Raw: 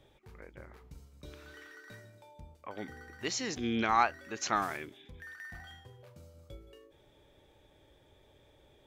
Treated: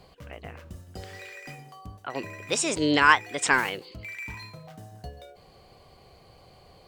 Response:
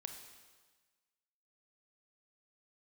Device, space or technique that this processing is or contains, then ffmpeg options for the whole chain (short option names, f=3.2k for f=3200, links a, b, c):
nightcore: -af "asetrate=56889,aresample=44100,volume=9dB"